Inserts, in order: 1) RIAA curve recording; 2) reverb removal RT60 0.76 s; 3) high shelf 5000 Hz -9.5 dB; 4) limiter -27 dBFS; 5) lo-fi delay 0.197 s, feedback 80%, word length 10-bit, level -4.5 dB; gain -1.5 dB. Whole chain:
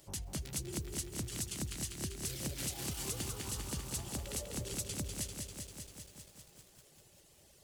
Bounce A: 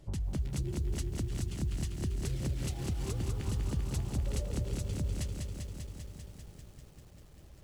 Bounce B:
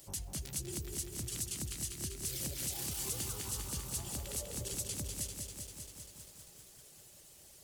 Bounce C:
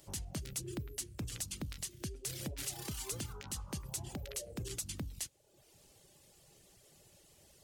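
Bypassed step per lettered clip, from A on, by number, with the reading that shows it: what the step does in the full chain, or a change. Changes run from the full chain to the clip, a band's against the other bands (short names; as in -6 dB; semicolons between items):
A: 1, 125 Hz band +10.5 dB; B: 3, 8 kHz band +4.0 dB; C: 5, crest factor change -1.5 dB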